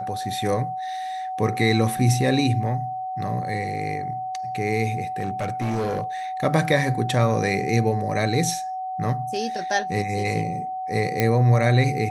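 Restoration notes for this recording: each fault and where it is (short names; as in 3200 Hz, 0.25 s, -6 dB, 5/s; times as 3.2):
tone 750 Hz -27 dBFS
5.19–6.04 clipped -21 dBFS
11.2 pop -6 dBFS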